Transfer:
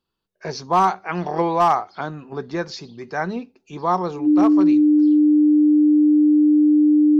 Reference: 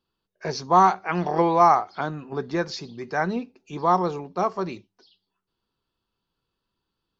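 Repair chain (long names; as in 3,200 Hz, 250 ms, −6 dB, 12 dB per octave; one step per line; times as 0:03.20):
clipped peaks rebuilt −9 dBFS
notch filter 300 Hz, Q 30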